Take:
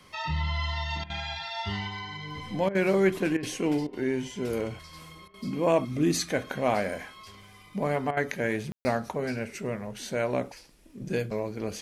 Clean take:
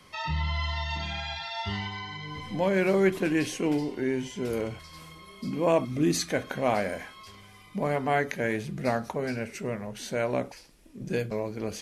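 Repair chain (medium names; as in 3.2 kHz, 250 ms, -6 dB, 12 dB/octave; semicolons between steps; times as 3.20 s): de-click; room tone fill 8.72–8.85 s; interpolate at 1.04/2.69/3.37/3.87/5.28/8.11 s, 58 ms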